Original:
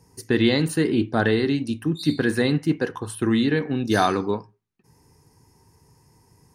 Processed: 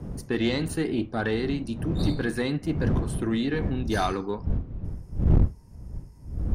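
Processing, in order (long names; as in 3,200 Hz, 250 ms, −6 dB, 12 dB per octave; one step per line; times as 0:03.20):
wind on the microphone 170 Hz −20 dBFS, from 0:03.69 86 Hz
tube saturation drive 8 dB, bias 0.35
level −4.5 dB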